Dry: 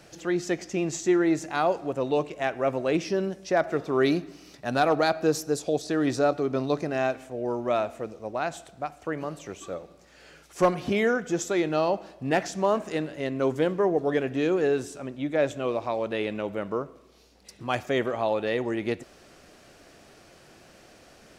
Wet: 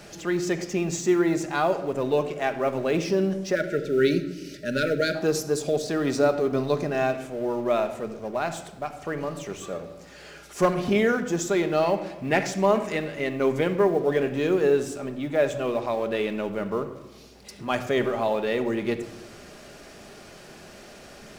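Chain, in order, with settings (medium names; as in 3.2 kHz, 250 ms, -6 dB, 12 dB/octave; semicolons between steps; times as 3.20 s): companding laws mixed up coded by mu; 3.55–5.15 s: spectral selection erased 640–1300 Hz; 11.81–13.88 s: peaking EQ 2.2 kHz +8 dB 0.37 oct; simulated room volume 3700 m³, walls furnished, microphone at 1.3 m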